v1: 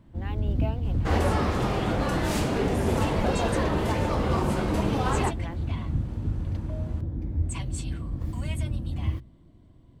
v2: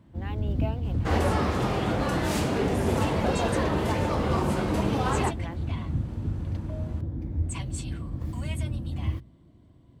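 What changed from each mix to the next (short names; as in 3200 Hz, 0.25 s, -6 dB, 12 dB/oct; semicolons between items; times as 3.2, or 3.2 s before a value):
master: add HPF 57 Hz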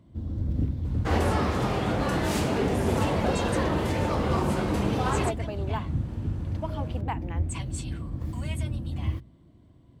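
speech: entry +1.85 s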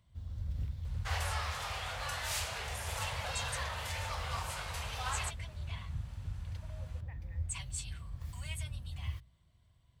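speech: add vocal tract filter e; second sound: add HPF 470 Hz 24 dB/oct; master: add passive tone stack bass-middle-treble 10-0-10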